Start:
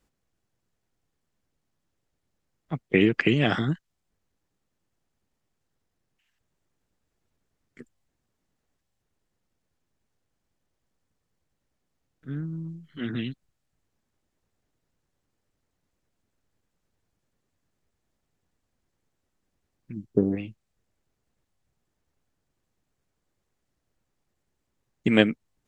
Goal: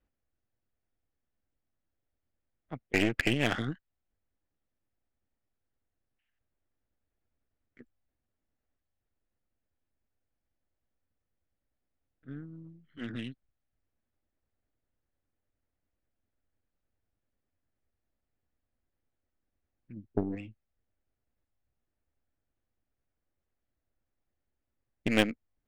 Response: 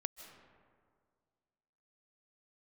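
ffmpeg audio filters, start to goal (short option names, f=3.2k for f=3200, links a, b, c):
-af "equalizer=f=160:t=o:w=0.67:g=-10,equalizer=f=400:t=o:w=0.67:g=-5,equalizer=f=1k:t=o:w=0.67:g=-6,adynamicsmooth=sensitivity=4.5:basefreq=2.5k,aeval=exprs='0.631*(cos(1*acos(clip(val(0)/0.631,-1,1)))-cos(1*PI/2))+0.0631*(cos(8*acos(clip(val(0)/0.631,-1,1)))-cos(8*PI/2))':c=same,volume=-4dB"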